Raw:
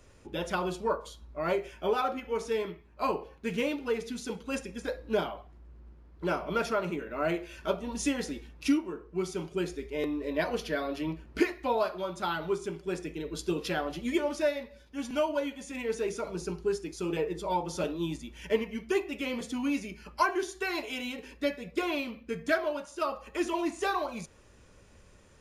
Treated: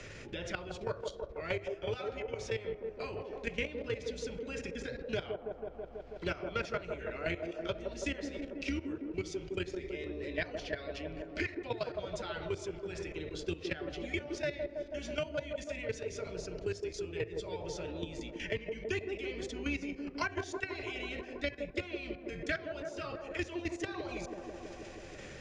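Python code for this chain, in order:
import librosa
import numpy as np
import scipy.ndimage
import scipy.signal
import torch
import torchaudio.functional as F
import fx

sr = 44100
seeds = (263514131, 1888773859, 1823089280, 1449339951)

y = fx.octave_divider(x, sr, octaves=2, level_db=-2.0)
y = fx.graphic_eq_10(y, sr, hz=(125, 250, 1000, 2000), db=(3, -5, -12, 6))
y = fx.level_steps(y, sr, step_db=15)
y = scipy.signal.sosfilt(scipy.signal.butter(4, 6700.0, 'lowpass', fs=sr, output='sos'), y)
y = fx.low_shelf(y, sr, hz=380.0, db=-5.0)
y = fx.echo_wet_bandpass(y, sr, ms=163, feedback_pct=66, hz=450.0, wet_db=-3.5)
y = fx.band_squash(y, sr, depth_pct=70)
y = F.gain(torch.from_numpy(y), 1.0).numpy()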